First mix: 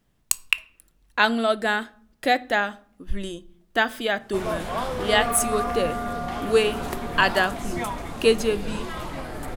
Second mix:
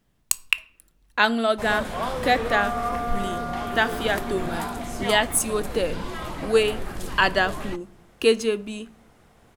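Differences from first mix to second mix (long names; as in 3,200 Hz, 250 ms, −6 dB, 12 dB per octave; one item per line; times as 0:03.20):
first sound: entry −2.75 s
second sound: entry −2.60 s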